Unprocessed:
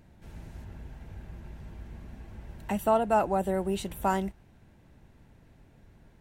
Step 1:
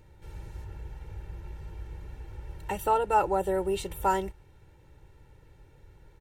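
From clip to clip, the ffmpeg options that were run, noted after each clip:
ffmpeg -i in.wav -af "aecho=1:1:2.2:0.84,volume=-1dB" out.wav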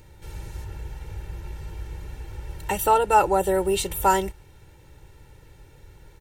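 ffmpeg -i in.wav -af "highshelf=frequency=3200:gain=8.5,volume=5.5dB" out.wav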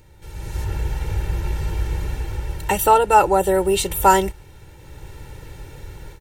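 ffmpeg -i in.wav -af "dynaudnorm=framelen=340:gausssize=3:maxgain=13dB,volume=-1dB" out.wav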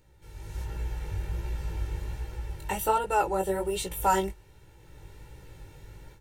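ffmpeg -i in.wav -af "flanger=delay=16:depth=4.9:speed=1.3,volume=-7.5dB" out.wav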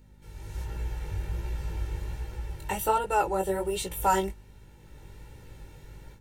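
ffmpeg -i in.wav -af "aeval=exprs='val(0)+0.00224*(sin(2*PI*50*n/s)+sin(2*PI*2*50*n/s)/2+sin(2*PI*3*50*n/s)/3+sin(2*PI*4*50*n/s)/4+sin(2*PI*5*50*n/s)/5)':channel_layout=same" out.wav

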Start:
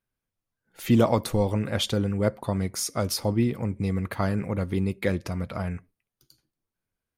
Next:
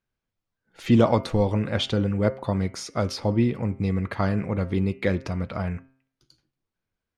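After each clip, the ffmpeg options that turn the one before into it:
ffmpeg -i in.wav -filter_complex "[0:a]lowpass=5400,bandreject=frequency=132.7:width_type=h:width=4,bandreject=frequency=265.4:width_type=h:width=4,bandreject=frequency=398.1:width_type=h:width=4,bandreject=frequency=530.8:width_type=h:width=4,bandreject=frequency=663.5:width_type=h:width=4,bandreject=frequency=796.2:width_type=h:width=4,bandreject=frequency=928.9:width_type=h:width=4,bandreject=frequency=1061.6:width_type=h:width=4,bandreject=frequency=1194.3:width_type=h:width=4,bandreject=frequency=1327:width_type=h:width=4,bandreject=frequency=1459.7:width_type=h:width=4,bandreject=frequency=1592.4:width_type=h:width=4,bandreject=frequency=1725.1:width_type=h:width=4,bandreject=frequency=1857.8:width_type=h:width=4,bandreject=frequency=1990.5:width_type=h:width=4,bandreject=frequency=2123.2:width_type=h:width=4,bandreject=frequency=2255.9:width_type=h:width=4,bandreject=frequency=2388.6:width_type=h:width=4,bandreject=frequency=2521.3:width_type=h:width=4,bandreject=frequency=2654:width_type=h:width=4,bandreject=frequency=2786.7:width_type=h:width=4,bandreject=frequency=2919.4:width_type=h:width=4,bandreject=frequency=3052.1:width_type=h:width=4,acrossover=split=4200[link_01][link_02];[link_02]alimiter=level_in=6dB:limit=-24dB:level=0:latency=1:release=183,volume=-6dB[link_03];[link_01][link_03]amix=inputs=2:normalize=0,volume=2dB" out.wav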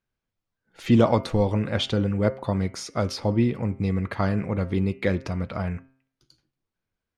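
ffmpeg -i in.wav -af anull out.wav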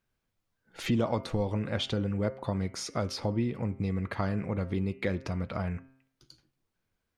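ffmpeg -i in.wav -af "acompressor=threshold=-39dB:ratio=2,volume=3.5dB" out.wav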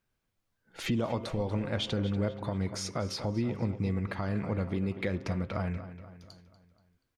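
ffmpeg -i in.wav -filter_complex "[0:a]asplit=2[link_01][link_02];[link_02]adelay=240,lowpass=frequency=4900:poles=1,volume=-13dB,asplit=2[link_03][link_04];[link_04]adelay=240,lowpass=frequency=4900:poles=1,volume=0.52,asplit=2[link_05][link_06];[link_06]adelay=240,lowpass=frequency=4900:poles=1,volume=0.52,asplit=2[link_07][link_08];[link_08]adelay=240,lowpass=frequency=4900:poles=1,volume=0.52,asplit=2[link_09][link_10];[link_10]adelay=240,lowpass=frequency=4900:poles=1,volume=0.52[link_11];[link_03][link_05][link_07][link_09][link_11]amix=inputs=5:normalize=0[link_12];[link_01][link_12]amix=inputs=2:normalize=0,alimiter=limit=-20.5dB:level=0:latency=1:release=132" out.wav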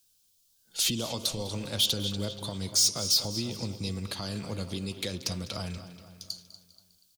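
ffmpeg -i in.wav -filter_complex "[0:a]acrossover=split=160|610|2600[link_01][link_02][link_03][link_04];[link_04]asoftclip=type=tanh:threshold=-40dB[link_05];[link_01][link_02][link_03][link_05]amix=inputs=4:normalize=0,aexciter=amount=13.3:drive=5.9:freq=3100,aecho=1:1:201|402|603|804:0.126|0.0604|0.029|0.0139,volume=-4dB" out.wav

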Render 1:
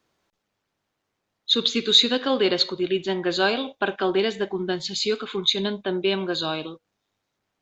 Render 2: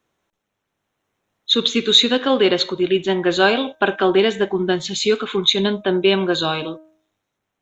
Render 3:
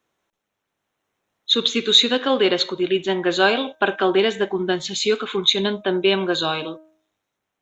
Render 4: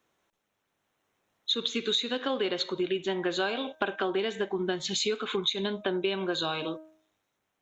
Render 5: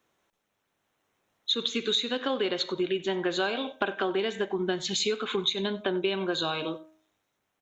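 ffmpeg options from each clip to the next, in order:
ffmpeg -i in.wav -af "equalizer=frequency=4700:width=5.6:gain=-14,bandreject=frequency=314.8:width_type=h:width=4,bandreject=frequency=629.6:width_type=h:width=4,bandreject=frequency=944.4:width_type=h:width=4,bandreject=frequency=1259.2:width_type=h:width=4,bandreject=frequency=1574:width_type=h:width=4,dynaudnorm=framelen=110:gausssize=17:maxgain=11.5dB" out.wav
ffmpeg -i in.wav -af "lowshelf=frequency=220:gain=-6,volume=-1dB" out.wav
ffmpeg -i in.wav -af "acompressor=threshold=-27dB:ratio=5" out.wav
ffmpeg -i in.wav -af "aecho=1:1:93:0.0944,volume=1dB" out.wav

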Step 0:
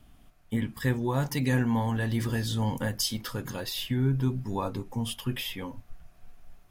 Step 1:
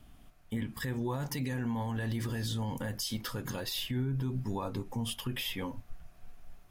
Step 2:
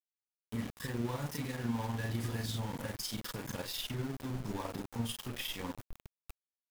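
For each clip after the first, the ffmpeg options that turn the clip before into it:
ffmpeg -i in.wav -af "alimiter=level_in=1.5dB:limit=-24dB:level=0:latency=1:release=106,volume=-1.5dB" out.wav
ffmpeg -i in.wav -filter_complex "[0:a]asplit=2[link_01][link_02];[link_02]adelay=34,volume=-2.5dB[link_03];[link_01][link_03]amix=inputs=2:normalize=0,tremolo=f=20:d=0.462,aeval=exprs='val(0)*gte(abs(val(0)),0.0126)':channel_layout=same,volume=-2.5dB" out.wav

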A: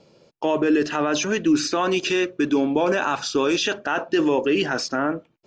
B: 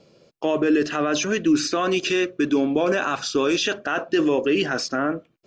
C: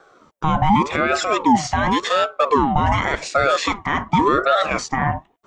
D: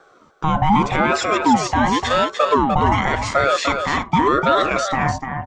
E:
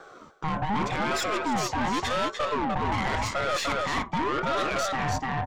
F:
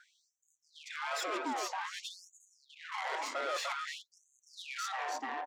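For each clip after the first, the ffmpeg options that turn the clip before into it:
ffmpeg -i in.wav -af "bandreject=frequency=890:width=5.8" out.wav
ffmpeg -i in.wav -af "equalizer=frequency=4300:width=2.1:gain=-11.5,aeval=exprs='val(0)*sin(2*PI*700*n/s+700*0.4/0.88*sin(2*PI*0.88*n/s))':channel_layout=same,volume=6.5dB" out.wav
ffmpeg -i in.wav -af "aecho=1:1:298:0.473" out.wav
ffmpeg -i in.wav -af "areverse,acompressor=threshold=-24dB:ratio=5,areverse,aeval=exprs='(tanh(22.4*val(0)+0.35)-tanh(0.35))/22.4':channel_layout=same,volume=4.5dB" out.wav
ffmpeg -i in.wav -af "afftfilt=real='re*gte(b*sr/1024,240*pow(6300/240,0.5+0.5*sin(2*PI*0.52*pts/sr)))':imag='im*gte(b*sr/1024,240*pow(6300/240,0.5+0.5*sin(2*PI*0.52*pts/sr)))':win_size=1024:overlap=0.75,volume=-8dB" out.wav

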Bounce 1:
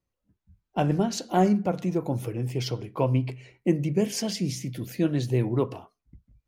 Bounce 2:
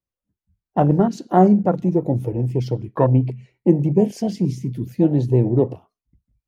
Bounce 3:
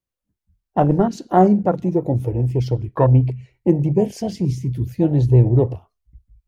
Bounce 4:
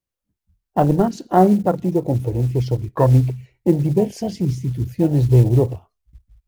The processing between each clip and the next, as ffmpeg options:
ffmpeg -i in.wav -af "afwtdn=0.0355,volume=8dB" out.wav
ffmpeg -i in.wav -af "asubboost=boost=11:cutoff=68,volume=1.5dB" out.wav
ffmpeg -i in.wav -af "acrusher=bits=8:mode=log:mix=0:aa=0.000001" out.wav

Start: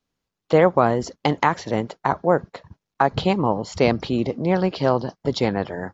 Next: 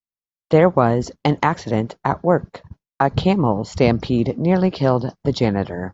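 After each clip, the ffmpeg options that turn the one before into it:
ffmpeg -i in.wav -af "lowshelf=frequency=250:gain=8,agate=range=-33dB:threshold=-37dB:ratio=3:detection=peak" out.wav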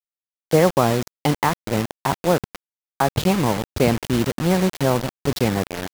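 ffmpeg -i in.wav -af "acrusher=bits=3:mix=0:aa=0.000001,volume=-2.5dB" out.wav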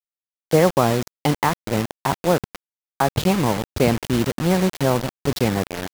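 ffmpeg -i in.wav -af anull out.wav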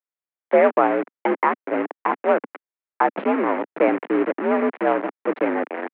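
ffmpeg -i in.wav -af "acrusher=bits=2:mode=log:mix=0:aa=0.000001,highpass=frequency=210:width_type=q:width=0.5412,highpass=frequency=210:width_type=q:width=1.307,lowpass=frequency=2200:width_type=q:width=0.5176,lowpass=frequency=2200:width_type=q:width=0.7071,lowpass=frequency=2200:width_type=q:width=1.932,afreqshift=62" out.wav

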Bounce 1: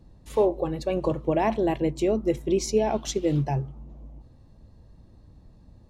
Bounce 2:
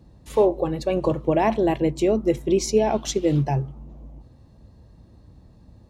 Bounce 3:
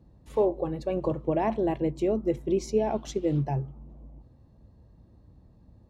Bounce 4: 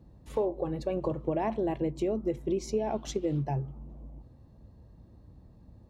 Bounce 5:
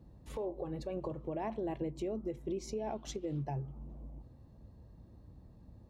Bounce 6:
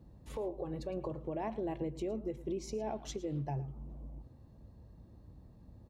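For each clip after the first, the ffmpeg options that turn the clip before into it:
ffmpeg -i in.wav -af "highpass=45,volume=3.5dB" out.wav
ffmpeg -i in.wav -af "highshelf=frequency=2100:gain=-9,volume=-5.5dB" out.wav
ffmpeg -i in.wav -af "acompressor=threshold=-30dB:ratio=2.5,volume=1.5dB" out.wav
ffmpeg -i in.wav -af "alimiter=level_in=3dB:limit=-24dB:level=0:latency=1:release=320,volume=-3dB,volume=-2dB" out.wav
ffmpeg -i in.wav -af "aecho=1:1:111:0.141" out.wav

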